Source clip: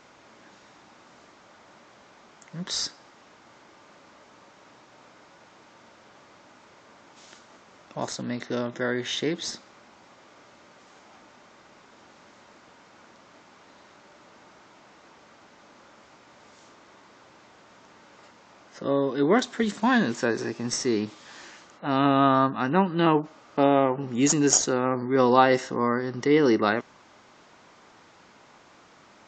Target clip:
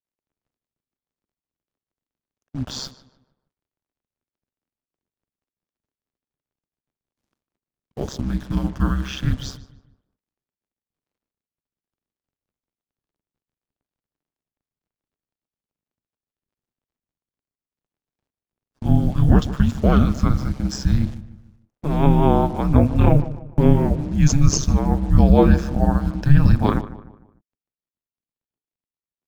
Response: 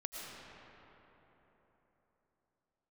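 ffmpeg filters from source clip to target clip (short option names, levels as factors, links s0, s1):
-filter_complex "[0:a]acrusher=bits=6:mix=0:aa=0.5,afreqshift=-370,tiltshelf=f=730:g=6,agate=range=0.0447:threshold=0.0126:ratio=16:detection=peak,aeval=exprs='val(0)*sin(2*PI*67*n/s)':c=same,asplit=2[s0][s1];[s1]adelay=150,lowpass=f=2300:p=1,volume=0.178,asplit=2[s2][s3];[s3]adelay=150,lowpass=f=2300:p=1,volume=0.42,asplit=2[s4][s5];[s5]adelay=150,lowpass=f=2300:p=1,volume=0.42,asplit=2[s6][s7];[s7]adelay=150,lowpass=f=2300:p=1,volume=0.42[s8];[s2][s4][s6][s8]amix=inputs=4:normalize=0[s9];[s0][s9]amix=inputs=2:normalize=0,alimiter=level_in=2.11:limit=0.891:release=50:level=0:latency=1,volume=0.891"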